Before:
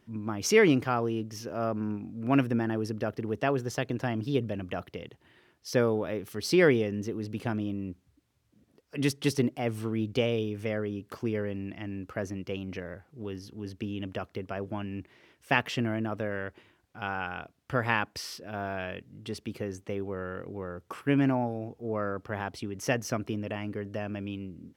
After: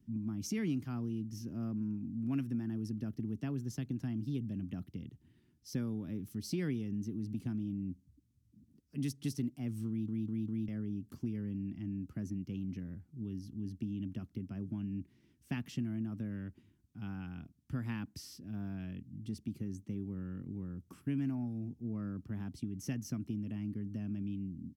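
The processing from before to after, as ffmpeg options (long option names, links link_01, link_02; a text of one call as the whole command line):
ffmpeg -i in.wav -filter_complex "[0:a]asplit=5[link_01][link_02][link_03][link_04][link_05];[link_01]atrim=end=10.082[link_06];[link_02]atrim=start=9.878:end=10.082[link_07];[link_03]atrim=start=9.878:end=10.082[link_08];[link_04]atrim=start=9.878:end=10.082[link_09];[link_05]atrim=start=10.678[link_10];[link_06][link_07]acrossfade=duration=0.004:curve1=hsin:curve2=hsin[link_11];[link_11][link_08]acrossfade=duration=0.004:curve1=hsin:curve2=hsin[link_12];[link_12][link_09]acrossfade=duration=0.004:curve1=hsin:curve2=hsin[link_13];[link_13][link_10]acrossfade=duration=0.004:curve1=hsin:curve2=hsin,firequalizer=gain_entry='entry(250,0);entry(480,-26);entry(5900,-12);entry(12000,-10)':delay=0.05:min_phase=1,acrossover=split=120|520[link_14][link_15][link_16];[link_14]acompressor=threshold=-52dB:ratio=4[link_17];[link_15]acompressor=threshold=-39dB:ratio=4[link_18];[link_16]acompressor=threshold=-43dB:ratio=4[link_19];[link_17][link_18][link_19]amix=inputs=3:normalize=0,volume=2.5dB" out.wav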